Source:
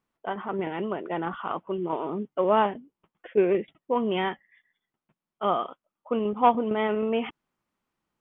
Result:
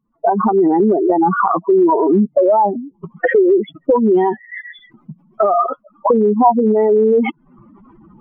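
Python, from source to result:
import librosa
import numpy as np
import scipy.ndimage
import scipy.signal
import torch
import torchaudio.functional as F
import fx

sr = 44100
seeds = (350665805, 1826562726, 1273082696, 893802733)

y = fx.spec_expand(x, sr, power=3.6)
y = fx.recorder_agc(y, sr, target_db=-15.5, rise_db_per_s=66.0, max_gain_db=30)
y = y * 10.0 ** (8.5 / 20.0)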